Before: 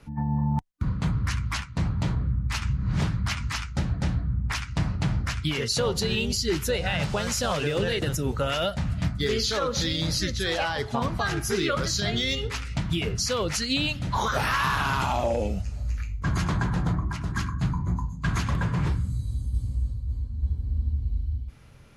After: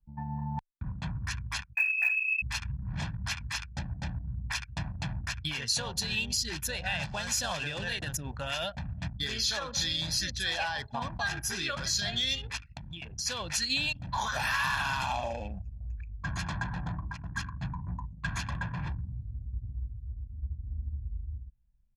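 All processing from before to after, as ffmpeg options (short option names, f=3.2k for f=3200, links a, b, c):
-filter_complex "[0:a]asettb=1/sr,asplit=3[a][b][c];[a]atrim=end=1.754[d];[b]atrim=start=1.75:end=2.42,asetpts=PTS-STARTPTS,afade=t=in:d=0.004:c=qsin,afade=t=out:st=0.666:d=0.004:c=qsin,highpass=99,lowpass=f=2.3k:t=q:w=0.5098,lowpass=f=2.3k:t=q:w=0.6013,lowpass=f=2.3k:t=q:w=0.9,lowpass=f=2.3k:t=q:w=2.563,afreqshift=-2700,acrusher=bits=6:mode=log:mix=0:aa=0.000001[e];[c]atrim=start=2.416[f];[d][e]acrossfade=d=0.004:c1=hsin:c2=qsin[g];[g][f]acrossfade=d=0.004:c1=qsin:c2=hsin,asettb=1/sr,asplit=3[h][i][j];[h]atrim=end=12.574[k];[i]atrim=start=12.57:end=13.26,asetpts=PTS-STARTPTS,afade=t=in:d=0.004:c=qsin,afade=t=out:st=0.686:d=0.004:c=qsin,bandreject=f=60:t=h:w=6,bandreject=f=120:t=h:w=6,bandreject=f=180:t=h:w=6,bandreject=f=240:t=h:w=6,bandreject=f=300:t=h:w=6,bandreject=f=360:t=h:w=6,bandreject=f=420:t=h:w=6,acompressor=threshold=-29dB:ratio=4:attack=3.2:release=140:knee=1:detection=peak[l];[j]atrim=start=13.256[m];[k][l]acrossfade=d=0.004:c1=hsin:c2=qsin[n];[n][m]acrossfade=d=0.004:c1=qsin:c2=hsin,anlmdn=10,tiltshelf=f=900:g=-5.5,aecho=1:1:1.2:0.63,volume=-8dB"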